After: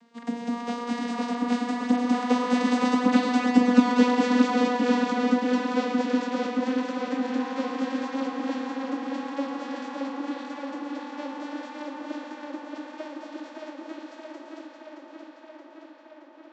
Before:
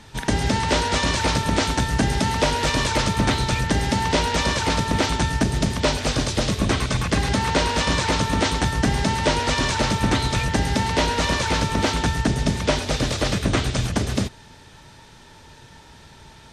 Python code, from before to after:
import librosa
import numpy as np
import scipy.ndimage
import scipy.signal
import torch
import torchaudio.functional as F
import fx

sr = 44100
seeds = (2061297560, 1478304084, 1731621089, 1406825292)

y = fx.vocoder_glide(x, sr, note=57, semitones=9)
y = fx.doppler_pass(y, sr, speed_mps=20, closest_m=25.0, pass_at_s=3.54)
y = fx.echo_tape(y, sr, ms=623, feedback_pct=79, wet_db=-3.0, lp_hz=5800.0, drive_db=4.0, wow_cents=19)